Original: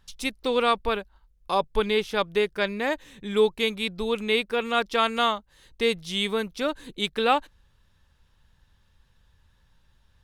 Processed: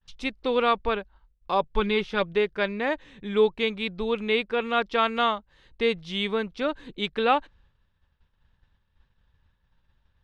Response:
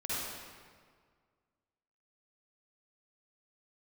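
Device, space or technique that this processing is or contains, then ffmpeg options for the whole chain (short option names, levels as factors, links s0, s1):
hearing-loss simulation: -filter_complex "[0:a]lowpass=3400,agate=range=0.0224:threshold=0.00178:ratio=3:detection=peak,asettb=1/sr,asplit=3[s0][s1][s2];[s0]atrim=end=1.734[s3];[s1]atrim=start=1.73:end=2.33,asetpts=PTS-STARTPTS,afade=t=in:d=0.004:c=qsin,afade=t=out:st=0.596:d=0.004:c=qsin,aecho=1:1:5.5:0.51,atrim=end_sample=26460[s4];[s2]atrim=start=2.326[s5];[s3][s4]acrossfade=d=0.004:c1=hsin:c2=qsin[s6];[s6][s5]acrossfade=d=0.004:c1=qsin:c2=hsin"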